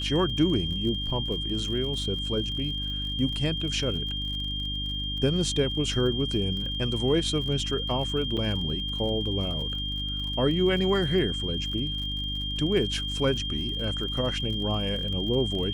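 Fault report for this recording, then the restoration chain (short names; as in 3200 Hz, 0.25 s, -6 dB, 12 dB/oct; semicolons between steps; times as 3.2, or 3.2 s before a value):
crackle 48/s -35 dBFS
hum 50 Hz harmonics 6 -34 dBFS
tone 3200 Hz -31 dBFS
8.37–8.38 gap 5.7 ms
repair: de-click; de-hum 50 Hz, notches 6; notch 3200 Hz, Q 30; interpolate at 8.37, 5.7 ms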